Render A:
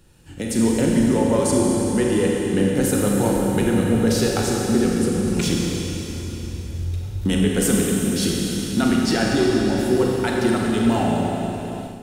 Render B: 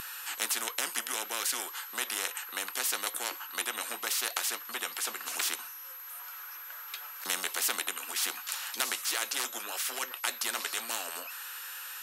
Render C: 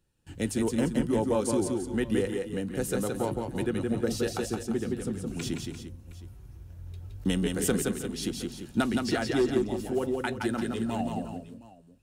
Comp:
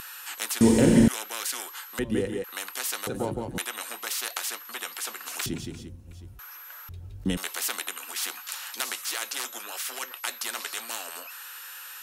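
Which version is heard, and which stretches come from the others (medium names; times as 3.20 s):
B
0.61–1.08 s: from A
1.99–2.44 s: from C
3.07–3.58 s: from C
5.46–6.39 s: from C
6.89–7.37 s: from C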